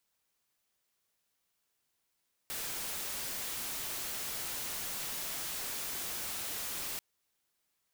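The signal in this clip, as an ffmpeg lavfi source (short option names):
-f lavfi -i "anoisesrc=c=white:a=0.0206:d=4.49:r=44100:seed=1"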